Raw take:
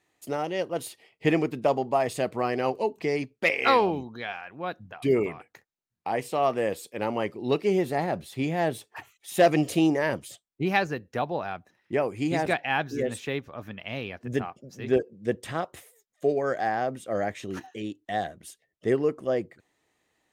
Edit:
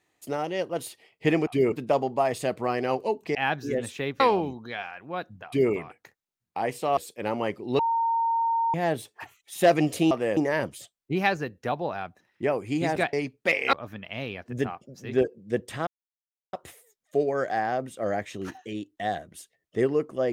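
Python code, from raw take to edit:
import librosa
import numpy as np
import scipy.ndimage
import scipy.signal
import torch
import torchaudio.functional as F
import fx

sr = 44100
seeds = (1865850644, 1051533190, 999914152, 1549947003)

y = fx.edit(x, sr, fx.swap(start_s=3.1, length_s=0.6, other_s=12.63, other_length_s=0.85),
    fx.duplicate(start_s=4.97, length_s=0.25, to_s=1.47),
    fx.move(start_s=6.47, length_s=0.26, to_s=9.87),
    fx.bleep(start_s=7.55, length_s=0.95, hz=918.0, db=-21.5),
    fx.insert_silence(at_s=15.62, length_s=0.66), tone=tone)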